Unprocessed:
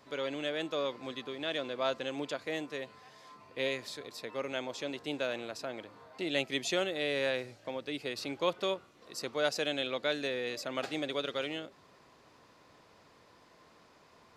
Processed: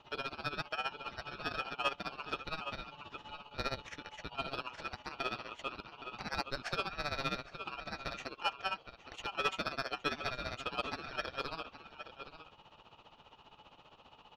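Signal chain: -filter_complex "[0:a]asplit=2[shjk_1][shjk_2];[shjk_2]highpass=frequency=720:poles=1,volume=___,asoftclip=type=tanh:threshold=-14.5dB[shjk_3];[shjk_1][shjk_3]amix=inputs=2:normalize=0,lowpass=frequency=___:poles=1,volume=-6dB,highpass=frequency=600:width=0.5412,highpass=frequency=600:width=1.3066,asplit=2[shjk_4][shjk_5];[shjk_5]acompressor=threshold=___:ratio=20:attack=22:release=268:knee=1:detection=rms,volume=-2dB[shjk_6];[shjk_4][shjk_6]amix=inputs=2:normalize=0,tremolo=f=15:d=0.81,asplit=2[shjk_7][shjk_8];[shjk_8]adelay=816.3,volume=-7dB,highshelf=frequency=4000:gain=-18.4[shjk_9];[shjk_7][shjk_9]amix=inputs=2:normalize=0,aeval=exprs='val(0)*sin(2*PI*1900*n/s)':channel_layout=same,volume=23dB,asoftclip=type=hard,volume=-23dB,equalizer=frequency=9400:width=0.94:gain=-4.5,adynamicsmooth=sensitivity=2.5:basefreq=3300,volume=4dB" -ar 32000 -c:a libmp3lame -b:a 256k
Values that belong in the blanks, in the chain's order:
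9dB, 2900, -45dB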